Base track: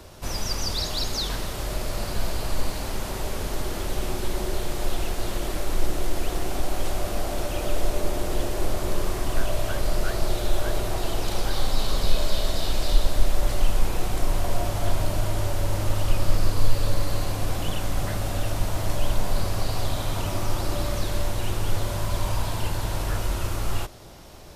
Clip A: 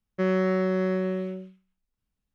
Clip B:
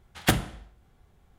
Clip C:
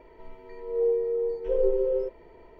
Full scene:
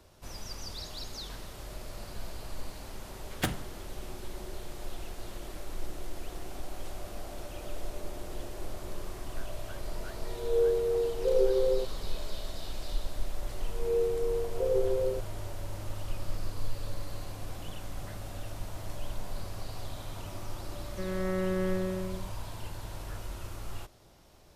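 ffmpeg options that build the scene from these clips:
-filter_complex "[3:a]asplit=2[a][b];[0:a]volume=-13.5dB[c];[b]dynaudnorm=f=400:g=3:m=9.5dB[d];[1:a]dynaudnorm=f=130:g=7:m=9dB[e];[2:a]atrim=end=1.38,asetpts=PTS-STARTPTS,volume=-8.5dB,afade=t=in:d=0.004:c=hsin,afade=t=out:st=1.376:d=0.004:c=hsin,adelay=3150[f];[a]atrim=end=2.59,asetpts=PTS-STARTPTS,volume=-1.5dB,afade=t=in:d=0.004:c=hsin,afade=t=out:st=2.586:d=0.004:c=hsin,adelay=9760[g];[d]atrim=end=2.59,asetpts=PTS-STARTPTS,volume=-13dB,afade=t=in:d=0.004:c=hsin,afade=t=out:st=2.586:d=0.004:c=hsin,adelay=13110[h];[e]atrim=end=2.34,asetpts=PTS-STARTPTS,volume=-14dB,afade=t=in:d=0.004:c=hsin,afade=t=out:st=2.336:d=0.004:c=hsin,adelay=20790[i];[c][f][g][h][i]amix=inputs=5:normalize=0"

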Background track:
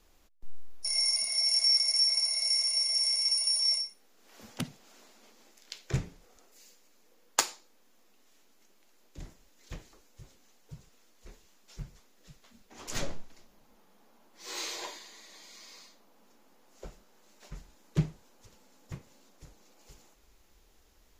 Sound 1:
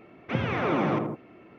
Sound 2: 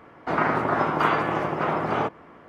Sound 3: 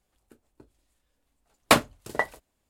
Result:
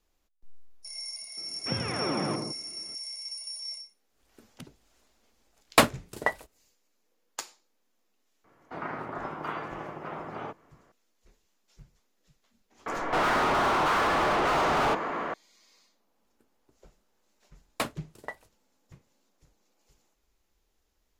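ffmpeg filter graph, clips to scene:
-filter_complex "[3:a]asplit=2[a][b];[2:a]asplit=2[c][d];[0:a]volume=-11dB[e];[d]asplit=2[f][g];[g]highpass=f=720:p=1,volume=39dB,asoftclip=type=tanh:threshold=-7dB[h];[f][h]amix=inputs=2:normalize=0,lowpass=f=1.9k:p=1,volume=-6dB[i];[1:a]atrim=end=1.58,asetpts=PTS-STARTPTS,volume=-5dB,afade=t=in:d=0.004:c=hsin,afade=t=out:st=1.576:d=0.004:c=hsin,adelay=1370[j];[a]atrim=end=2.69,asetpts=PTS-STARTPTS,volume=-1dB,afade=t=in:d=0.1,afade=t=out:st=2.59:d=0.1,adelay=4070[k];[c]atrim=end=2.48,asetpts=PTS-STARTPTS,volume=-13.5dB,afade=t=in:d=0.004:c=hsin,afade=t=out:st=2.476:d=0.004:c=hsin,adelay=8440[l];[i]atrim=end=2.48,asetpts=PTS-STARTPTS,volume=-10.5dB,afade=t=in:d=0.004:c=hsin,afade=t=out:st=2.476:d=0.004:c=hsin,adelay=12860[m];[b]atrim=end=2.69,asetpts=PTS-STARTPTS,volume=-13dB,afade=t=in:d=0.004:c=hsin,afade=t=out:st=2.686:d=0.004:c=hsin,adelay=16090[n];[e][j][k][l][m][n]amix=inputs=6:normalize=0"

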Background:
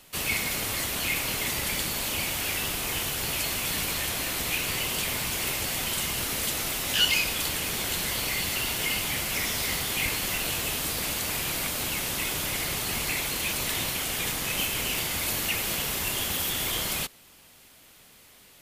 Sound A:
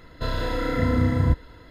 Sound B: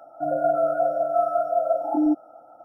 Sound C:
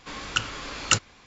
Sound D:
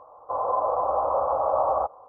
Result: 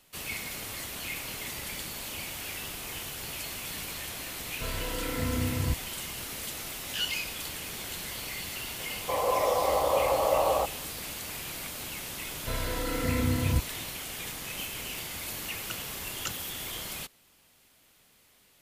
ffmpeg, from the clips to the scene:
-filter_complex "[1:a]asplit=2[a][b];[0:a]volume=-8.5dB[c];[4:a]lowshelf=f=540:t=q:w=1.5:g=6.5[d];[a]atrim=end=1.7,asetpts=PTS-STARTPTS,volume=-9dB,afade=t=in:d=0.004:c=hsin,afade=t=out:st=1.696:d=0.004:c=hsin,adelay=4400[e];[d]atrim=end=2.08,asetpts=PTS-STARTPTS,volume=-2.5dB,afade=t=in:d=0.004:c=hsin,afade=t=out:st=2.076:d=0.004:c=hsin,adelay=8790[f];[b]atrim=end=1.7,asetpts=PTS-STARTPTS,volume=-6.5dB,afade=t=in:d=0.004:c=hsin,afade=t=out:st=1.696:d=0.004:c=hsin,adelay=12260[g];[3:a]atrim=end=1.26,asetpts=PTS-STARTPTS,volume=-15.5dB,afade=t=in:d=0.004:c=hsin,afade=t=out:st=1.256:d=0.004:c=hsin,adelay=15340[h];[c][e][f][g][h]amix=inputs=5:normalize=0"

